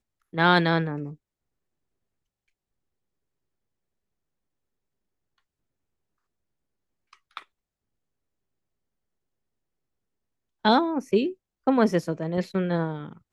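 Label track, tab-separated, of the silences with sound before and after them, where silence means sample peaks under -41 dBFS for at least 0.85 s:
1.140000	7.130000	silence
7.420000	10.650000	silence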